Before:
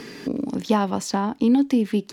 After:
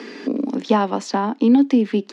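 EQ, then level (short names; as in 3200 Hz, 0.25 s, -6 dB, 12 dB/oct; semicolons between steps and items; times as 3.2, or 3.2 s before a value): steep high-pass 210 Hz 48 dB/oct; air absorption 110 m; +4.5 dB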